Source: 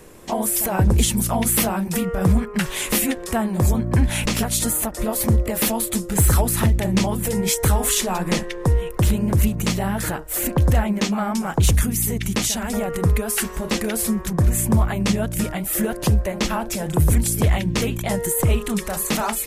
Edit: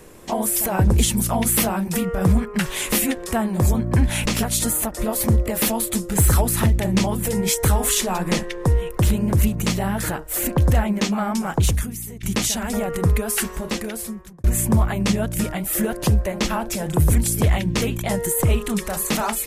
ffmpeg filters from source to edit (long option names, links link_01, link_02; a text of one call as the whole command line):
ffmpeg -i in.wav -filter_complex "[0:a]asplit=3[link_01][link_02][link_03];[link_01]atrim=end=12.23,asetpts=PTS-STARTPTS,afade=type=out:start_time=11.56:duration=0.67:curve=qua:silence=0.223872[link_04];[link_02]atrim=start=12.23:end=14.44,asetpts=PTS-STARTPTS,afade=type=in:duration=0.004:curve=hsin:silence=0.223872,afade=type=out:start_time=1.2:duration=1.01[link_05];[link_03]atrim=start=14.44,asetpts=PTS-STARTPTS,afade=type=in:duration=0.004:curve=hsin[link_06];[link_04][link_05][link_06]concat=n=3:v=0:a=1" out.wav